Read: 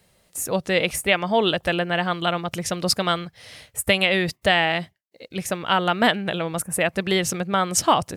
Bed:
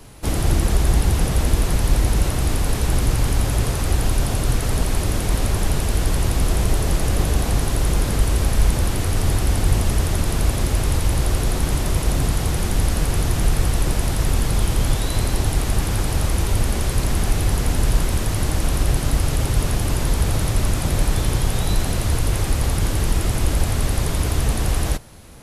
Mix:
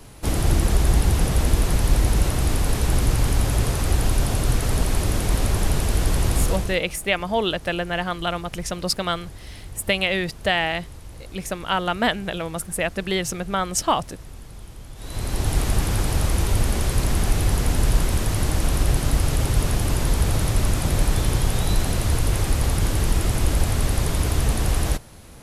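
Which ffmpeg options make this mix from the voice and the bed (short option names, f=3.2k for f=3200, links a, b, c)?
-filter_complex "[0:a]adelay=6000,volume=-2.5dB[a];[1:a]volume=19dB,afade=t=out:st=6.4:d=0.4:silence=0.1,afade=t=in:st=14.95:d=0.62:silence=0.1[b];[a][b]amix=inputs=2:normalize=0"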